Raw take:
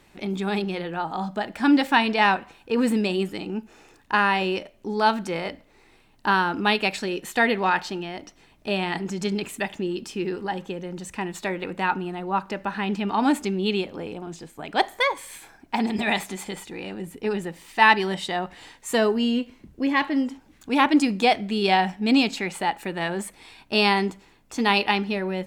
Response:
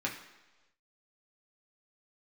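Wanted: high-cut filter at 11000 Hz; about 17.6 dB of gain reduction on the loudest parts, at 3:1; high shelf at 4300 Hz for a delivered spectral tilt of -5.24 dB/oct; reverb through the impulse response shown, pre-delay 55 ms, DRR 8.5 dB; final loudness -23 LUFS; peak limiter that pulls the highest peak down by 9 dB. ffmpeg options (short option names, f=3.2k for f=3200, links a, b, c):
-filter_complex "[0:a]lowpass=11k,highshelf=f=4.3k:g=-8,acompressor=threshold=-38dB:ratio=3,alimiter=level_in=6dB:limit=-24dB:level=0:latency=1,volume=-6dB,asplit=2[a][b];[1:a]atrim=start_sample=2205,adelay=55[c];[b][c]afir=irnorm=-1:irlink=0,volume=-13.5dB[d];[a][d]amix=inputs=2:normalize=0,volume=16.5dB"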